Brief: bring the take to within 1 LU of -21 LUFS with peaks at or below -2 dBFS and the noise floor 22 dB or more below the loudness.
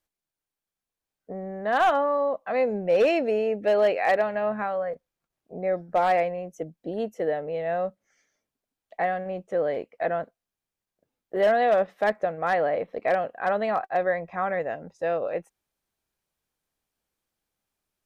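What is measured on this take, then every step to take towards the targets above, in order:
clipped 0.4%; flat tops at -15.0 dBFS; loudness -26.0 LUFS; peak -15.0 dBFS; loudness target -21.0 LUFS
-> clip repair -15 dBFS; gain +5 dB

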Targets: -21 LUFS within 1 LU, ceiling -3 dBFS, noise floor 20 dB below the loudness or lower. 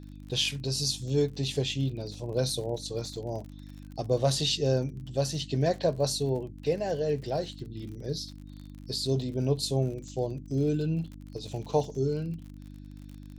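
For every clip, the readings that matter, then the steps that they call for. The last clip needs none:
ticks 48/s; hum 50 Hz; harmonics up to 300 Hz; hum level -43 dBFS; loudness -30.0 LUFS; peak -13.0 dBFS; loudness target -21.0 LUFS
-> de-click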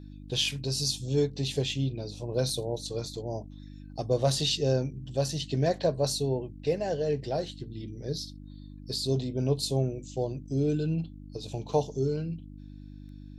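ticks 0.15/s; hum 50 Hz; harmonics up to 300 Hz; hum level -43 dBFS
-> de-hum 50 Hz, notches 6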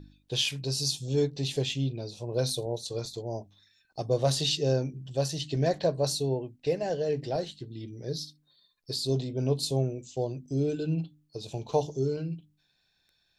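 hum none; loudness -30.5 LUFS; peak -13.0 dBFS; loudness target -21.0 LUFS
-> gain +9.5 dB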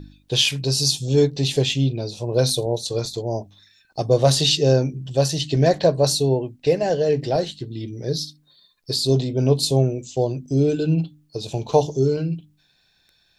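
loudness -21.0 LUFS; peak -3.5 dBFS; noise floor -63 dBFS

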